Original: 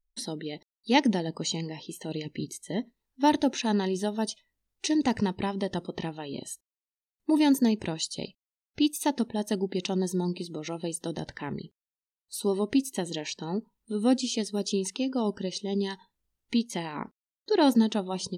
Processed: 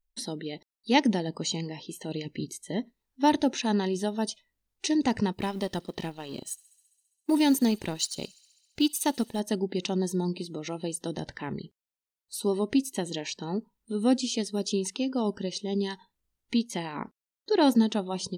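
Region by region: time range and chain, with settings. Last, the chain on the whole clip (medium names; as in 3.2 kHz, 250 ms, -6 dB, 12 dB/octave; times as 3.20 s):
5.33–9.40 s: companding laws mixed up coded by A + treble shelf 5 kHz +7 dB + feedback echo behind a high-pass 67 ms, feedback 77%, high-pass 3.2 kHz, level -22.5 dB
whole clip: none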